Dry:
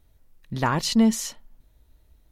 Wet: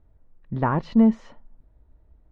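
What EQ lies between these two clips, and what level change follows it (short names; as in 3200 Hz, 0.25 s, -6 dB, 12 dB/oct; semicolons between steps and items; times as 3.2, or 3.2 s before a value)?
LPF 1200 Hz 12 dB/oct; air absorption 50 m; +2.0 dB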